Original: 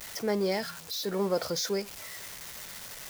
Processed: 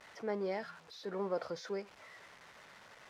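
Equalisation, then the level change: LPF 1300 Hz 12 dB/oct; tilt +4.5 dB/oct; low shelf 460 Hz +6 dB; -5.5 dB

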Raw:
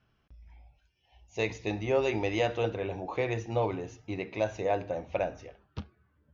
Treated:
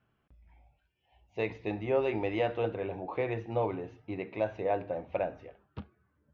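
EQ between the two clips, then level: air absorption 340 m; low shelf 74 Hz -11.5 dB; 0.0 dB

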